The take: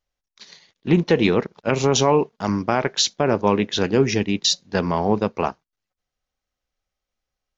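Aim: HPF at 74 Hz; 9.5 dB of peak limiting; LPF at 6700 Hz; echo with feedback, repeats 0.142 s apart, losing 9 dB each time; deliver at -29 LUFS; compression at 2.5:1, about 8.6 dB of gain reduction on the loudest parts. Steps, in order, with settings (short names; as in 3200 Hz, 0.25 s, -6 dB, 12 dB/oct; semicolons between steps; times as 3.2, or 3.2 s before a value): HPF 74 Hz; LPF 6700 Hz; compressor 2.5:1, threshold -25 dBFS; limiter -19.5 dBFS; feedback echo 0.142 s, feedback 35%, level -9 dB; gain +1.5 dB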